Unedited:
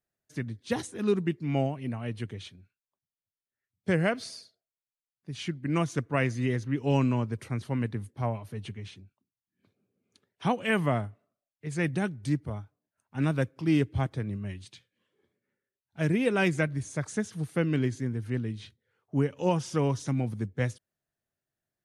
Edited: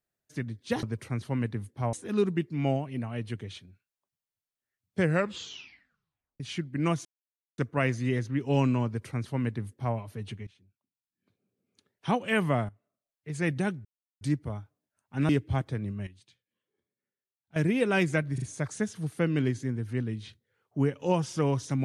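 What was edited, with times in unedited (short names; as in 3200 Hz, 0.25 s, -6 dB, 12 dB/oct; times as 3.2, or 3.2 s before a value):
3.94 tape stop 1.36 s
5.95 insert silence 0.53 s
7.23–8.33 copy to 0.83
8.84–10.48 fade in, from -18.5 dB
11.06–11.71 fade in, from -13.5 dB
12.22 insert silence 0.36 s
13.3–13.74 cut
14.52–16.01 gain -11 dB
16.79 stutter 0.04 s, 3 plays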